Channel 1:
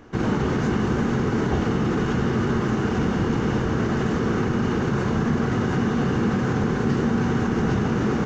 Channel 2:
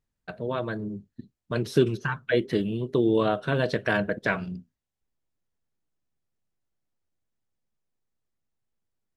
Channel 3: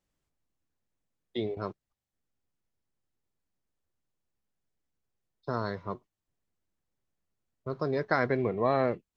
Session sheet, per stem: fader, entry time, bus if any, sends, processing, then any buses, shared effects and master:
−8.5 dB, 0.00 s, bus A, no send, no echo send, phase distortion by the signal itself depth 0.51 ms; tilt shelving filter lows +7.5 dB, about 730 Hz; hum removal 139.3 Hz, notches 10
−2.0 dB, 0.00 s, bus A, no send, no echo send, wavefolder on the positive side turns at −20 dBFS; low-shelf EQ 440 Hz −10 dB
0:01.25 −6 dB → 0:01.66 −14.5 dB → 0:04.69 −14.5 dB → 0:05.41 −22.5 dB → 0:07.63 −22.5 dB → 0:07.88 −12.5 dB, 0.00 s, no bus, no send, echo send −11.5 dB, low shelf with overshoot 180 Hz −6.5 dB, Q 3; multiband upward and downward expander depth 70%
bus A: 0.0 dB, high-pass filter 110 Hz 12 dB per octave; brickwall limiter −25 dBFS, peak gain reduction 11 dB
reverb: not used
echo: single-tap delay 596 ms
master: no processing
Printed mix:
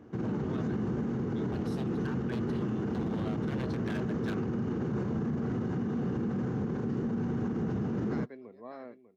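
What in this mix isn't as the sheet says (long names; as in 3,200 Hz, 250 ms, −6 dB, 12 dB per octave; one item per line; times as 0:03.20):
stem 1: missing phase distortion by the signal itself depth 0.51 ms
stem 2 −2.0 dB → −9.5 dB
stem 3 −6.0 dB → −16.0 dB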